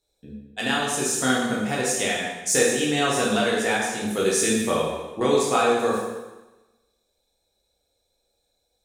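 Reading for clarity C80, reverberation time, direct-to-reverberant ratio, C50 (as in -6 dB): 3.0 dB, 1.1 s, -5.5 dB, 0.5 dB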